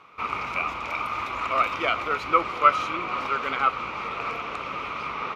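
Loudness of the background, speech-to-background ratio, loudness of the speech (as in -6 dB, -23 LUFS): -30.5 LUFS, 4.5 dB, -26.0 LUFS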